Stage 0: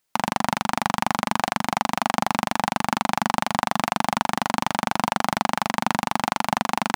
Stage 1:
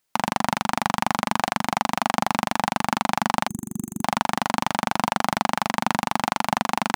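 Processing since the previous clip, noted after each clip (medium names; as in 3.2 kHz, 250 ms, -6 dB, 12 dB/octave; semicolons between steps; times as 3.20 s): time-frequency box 3.48–4.03 s, 380–6300 Hz -29 dB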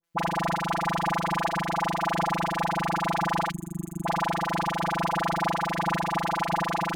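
treble shelf 3 kHz -7.5 dB; robot voice 168 Hz; phase dispersion highs, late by 41 ms, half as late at 1 kHz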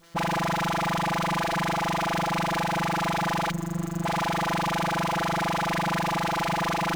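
peak limiter -21 dBFS, peak gain reduction 6.5 dB; power-law waveshaper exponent 0.5; sliding maximum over 3 samples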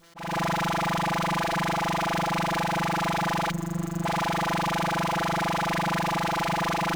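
slow attack 254 ms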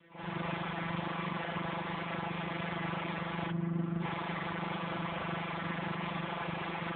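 one-sided clip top -37.5 dBFS, bottom -24.5 dBFS; reverse echo 53 ms -5 dB; trim -3 dB; AMR-NB 4.75 kbps 8 kHz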